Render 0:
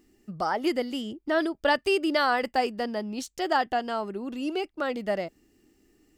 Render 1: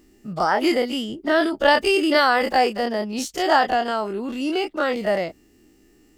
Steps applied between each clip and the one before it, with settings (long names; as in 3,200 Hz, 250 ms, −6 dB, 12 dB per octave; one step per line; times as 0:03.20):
every bin's largest magnitude spread in time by 60 ms
level +3.5 dB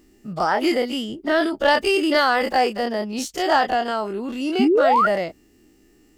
soft clipping −6 dBFS, distortion −25 dB
sound drawn into the spectrogram rise, 0:04.59–0:05.07, 220–1,500 Hz −16 dBFS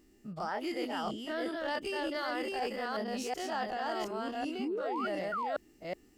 delay that plays each chunk backwards 371 ms, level −2 dB
reversed playback
downward compressor, threshold −24 dBFS, peak gain reduction 12.5 dB
reversed playback
level −8.5 dB